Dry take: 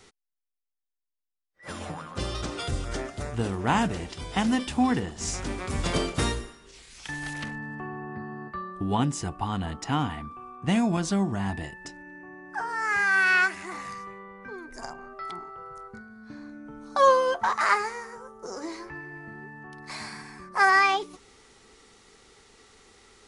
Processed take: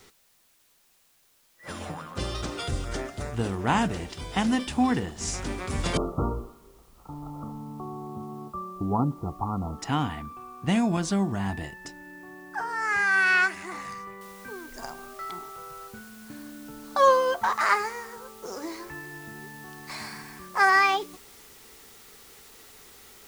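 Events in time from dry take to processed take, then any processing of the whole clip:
5.97–9.79 s: brick-wall FIR low-pass 1.4 kHz
14.21 s: noise floor step -64 dB -52 dB

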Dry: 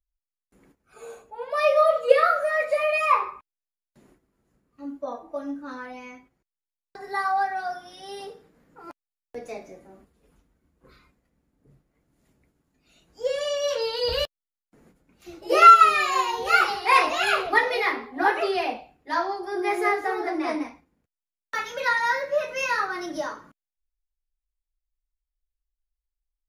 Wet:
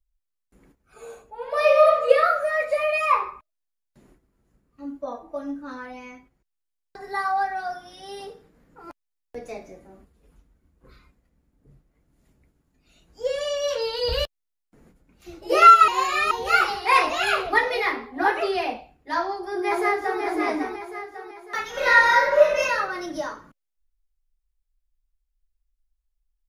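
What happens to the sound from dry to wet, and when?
1.35–1.86 s: reverb throw, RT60 1.4 s, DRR 0.5 dB
15.88–16.31 s: reverse
19.16–20.21 s: echo throw 550 ms, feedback 45%, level -5.5 dB
21.70–22.61 s: reverb throw, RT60 0.84 s, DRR -5.5 dB
whole clip: bass shelf 77 Hz +11.5 dB

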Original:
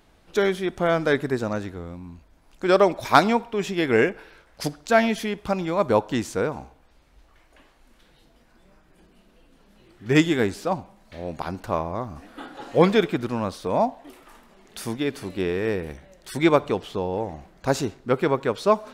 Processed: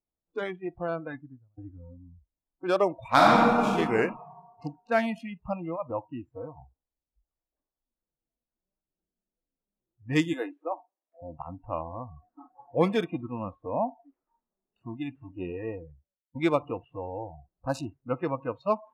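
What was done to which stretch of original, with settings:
0.62–1.58 s: fade out
3.07–3.68 s: reverb throw, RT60 2.3 s, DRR -6 dB
5.76–6.58 s: gain -5 dB
10.33–11.22 s: elliptic high-pass 280 Hz
15.58–16.35 s: studio fade out
whole clip: local Wiener filter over 9 samples; spectral noise reduction 29 dB; level-controlled noise filter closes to 970 Hz, open at -18.5 dBFS; trim -6.5 dB

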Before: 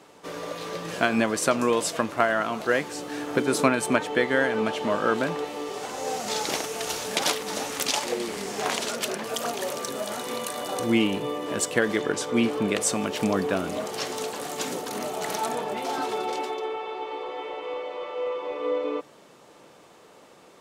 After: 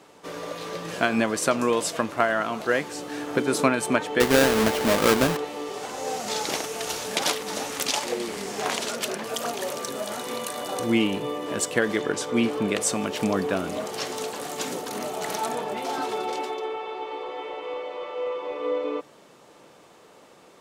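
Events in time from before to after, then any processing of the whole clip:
4.20–5.37 s: square wave that keeps the level

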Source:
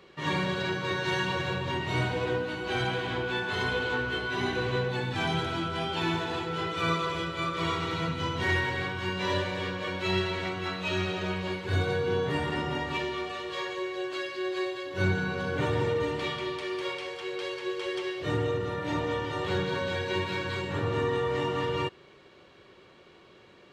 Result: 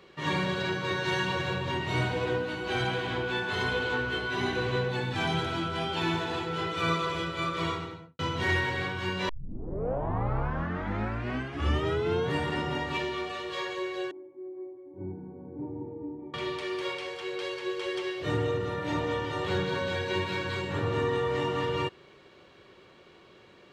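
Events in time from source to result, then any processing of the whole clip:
7.56–8.19 s: studio fade out
9.29 s: tape start 3.04 s
14.11–16.34 s: cascade formant filter u

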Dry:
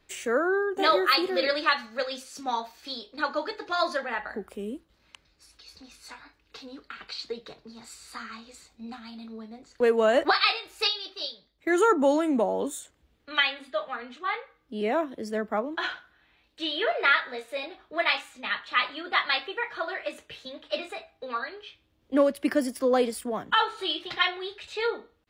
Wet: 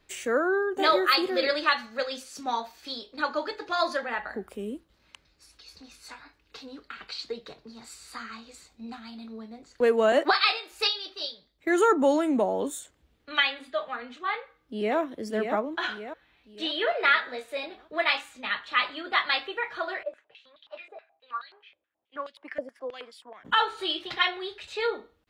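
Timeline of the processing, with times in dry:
10.12–10.72 s: steep high-pass 200 Hz 48 dB/octave
14.33–14.97 s: echo throw 580 ms, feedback 45%, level -5.5 dB
20.03–23.45 s: step-sequenced band-pass 9.4 Hz 570–3600 Hz

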